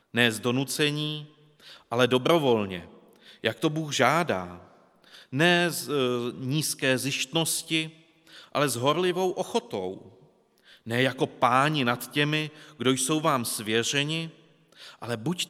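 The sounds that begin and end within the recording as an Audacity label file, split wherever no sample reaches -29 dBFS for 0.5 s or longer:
1.920000	2.790000	sound
3.440000	4.520000	sound
5.340000	7.850000	sound
8.550000	9.940000	sound
10.870000	14.250000	sound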